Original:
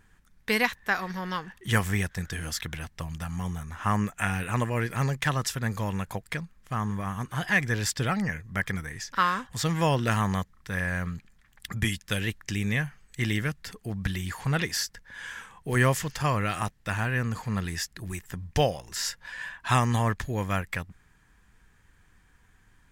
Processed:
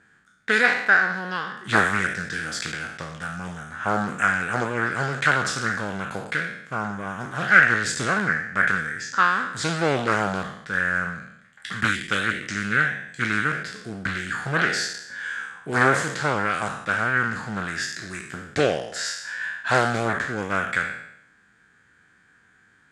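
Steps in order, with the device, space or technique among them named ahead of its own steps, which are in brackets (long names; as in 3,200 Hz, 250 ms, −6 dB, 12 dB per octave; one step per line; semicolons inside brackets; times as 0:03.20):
peak hold with a decay on every bin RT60 0.78 s
full-range speaker at full volume (highs frequency-modulated by the lows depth 0.69 ms; loudspeaker in its box 170–8,500 Hz, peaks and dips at 960 Hz −7 dB, 1,500 Hz +10 dB, 2,800 Hz −3 dB, 5,700 Hz −5 dB)
0:04.32–0:05.11: low-pass filter 11,000 Hz 12 dB per octave
level +1.5 dB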